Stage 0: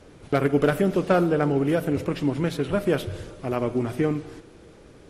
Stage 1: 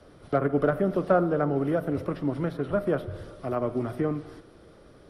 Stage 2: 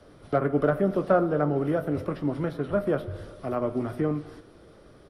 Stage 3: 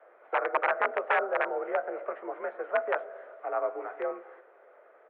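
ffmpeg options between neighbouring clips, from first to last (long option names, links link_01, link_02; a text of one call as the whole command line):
ffmpeg -i in.wav -filter_complex "[0:a]superequalizer=8b=1.58:10b=1.58:12b=0.631:15b=0.355,acrossover=split=140|490|1900[link_01][link_02][link_03][link_04];[link_04]acompressor=threshold=-50dB:ratio=10[link_05];[link_01][link_02][link_03][link_05]amix=inputs=4:normalize=0,volume=-4dB" out.wav
ffmpeg -i in.wav -filter_complex "[0:a]asplit=2[link_01][link_02];[link_02]adelay=20,volume=-11.5dB[link_03];[link_01][link_03]amix=inputs=2:normalize=0" out.wav
ffmpeg -i in.wav -af "aeval=exprs='(mod(5.96*val(0)+1,2)-1)/5.96':channel_layout=same,highpass=frequency=450:width_type=q:width=0.5412,highpass=frequency=450:width_type=q:width=1.307,lowpass=frequency=2200:width_type=q:width=0.5176,lowpass=frequency=2200:width_type=q:width=0.7071,lowpass=frequency=2200:width_type=q:width=1.932,afreqshift=54" out.wav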